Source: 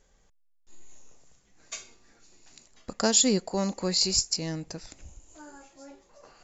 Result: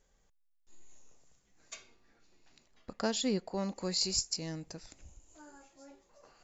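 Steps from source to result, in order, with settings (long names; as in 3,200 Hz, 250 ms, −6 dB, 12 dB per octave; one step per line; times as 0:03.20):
0:01.74–0:03.76: low-pass filter 4,100 Hz 12 dB per octave
level −7 dB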